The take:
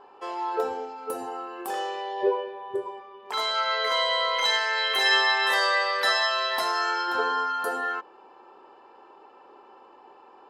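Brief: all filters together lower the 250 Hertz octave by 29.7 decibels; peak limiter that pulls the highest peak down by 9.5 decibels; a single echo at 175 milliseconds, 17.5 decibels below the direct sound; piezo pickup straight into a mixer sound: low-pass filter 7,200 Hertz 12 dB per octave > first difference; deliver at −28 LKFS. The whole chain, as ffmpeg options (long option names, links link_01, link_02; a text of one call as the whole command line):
ffmpeg -i in.wav -af "equalizer=frequency=250:width_type=o:gain=-8.5,alimiter=limit=-19.5dB:level=0:latency=1,lowpass=7200,aderivative,aecho=1:1:175:0.133,volume=9.5dB" out.wav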